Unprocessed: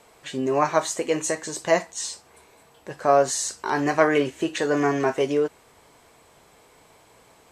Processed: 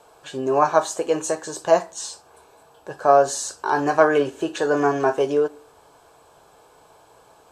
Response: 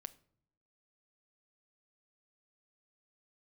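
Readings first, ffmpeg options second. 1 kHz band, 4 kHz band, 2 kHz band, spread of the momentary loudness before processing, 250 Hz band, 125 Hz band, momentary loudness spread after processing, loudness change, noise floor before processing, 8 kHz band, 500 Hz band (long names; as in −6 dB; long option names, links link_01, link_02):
+4.0 dB, −1.5 dB, +0.5 dB, 11 LU, −0.5 dB, −1.5 dB, 12 LU, +2.5 dB, −56 dBFS, −1.5 dB, +3.0 dB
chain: -filter_complex "[0:a]asplit=2[link_01][link_02];[link_02]highpass=frequency=240:width=0.5412,highpass=frequency=240:width=1.3066,equalizer=frequency=250:width_type=q:width=4:gain=5,equalizer=frequency=820:width_type=q:width=4:gain=5,equalizer=frequency=1700:width_type=q:width=4:gain=7,lowpass=frequency=2100:width=0.5412,lowpass=frequency=2100:width=1.3066[link_03];[1:a]atrim=start_sample=2205,asetrate=61740,aresample=44100[link_04];[link_03][link_04]afir=irnorm=-1:irlink=0,volume=5.5dB[link_05];[link_01][link_05]amix=inputs=2:normalize=0,volume=-1.5dB"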